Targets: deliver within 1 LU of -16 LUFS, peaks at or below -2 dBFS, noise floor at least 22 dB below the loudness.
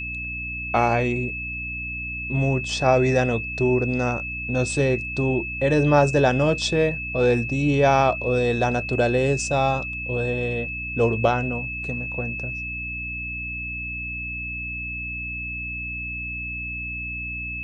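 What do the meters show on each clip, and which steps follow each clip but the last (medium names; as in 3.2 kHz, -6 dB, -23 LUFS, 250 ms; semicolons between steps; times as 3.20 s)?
hum 60 Hz; highest harmonic 300 Hz; hum level -34 dBFS; steady tone 2.6 kHz; tone level -29 dBFS; loudness -23.5 LUFS; peak level -4.5 dBFS; loudness target -16.0 LUFS
-> hum notches 60/120/180/240/300 Hz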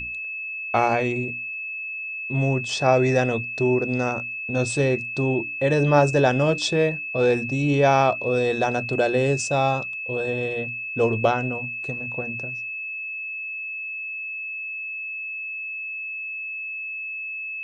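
hum not found; steady tone 2.6 kHz; tone level -29 dBFS
-> band-stop 2.6 kHz, Q 30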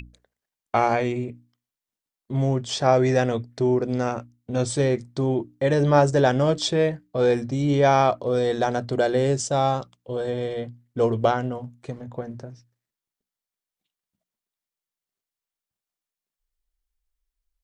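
steady tone not found; loudness -23.0 LUFS; peak level -4.0 dBFS; loudness target -16.0 LUFS
-> trim +7 dB; peak limiter -2 dBFS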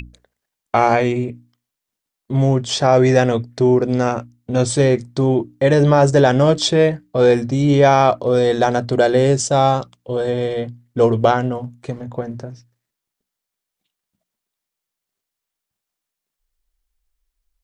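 loudness -16.5 LUFS; peak level -2.0 dBFS; noise floor -83 dBFS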